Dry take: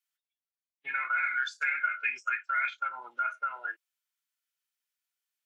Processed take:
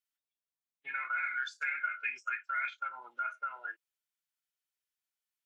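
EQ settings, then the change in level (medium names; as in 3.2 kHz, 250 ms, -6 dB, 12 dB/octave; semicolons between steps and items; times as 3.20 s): flat; -5.0 dB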